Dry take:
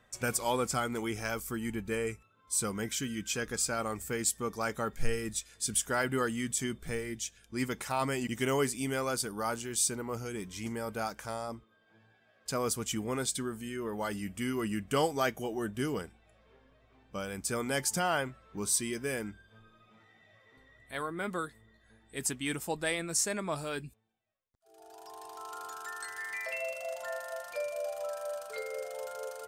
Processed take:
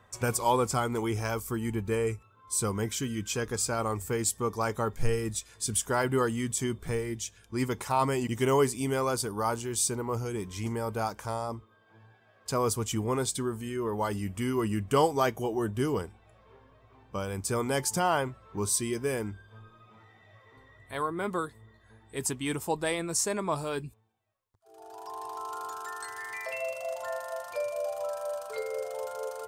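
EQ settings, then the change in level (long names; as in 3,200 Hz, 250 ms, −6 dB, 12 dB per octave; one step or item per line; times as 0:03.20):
dynamic equaliser 1,500 Hz, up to −4 dB, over −48 dBFS, Q 0.93
graphic EQ with 15 bands 100 Hz +11 dB, 400 Hz +5 dB, 1,000 Hz +10 dB
+1.0 dB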